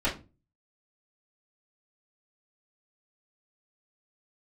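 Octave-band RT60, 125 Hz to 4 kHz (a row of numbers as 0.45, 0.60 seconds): 0.55, 0.45, 0.35, 0.25, 0.25, 0.20 seconds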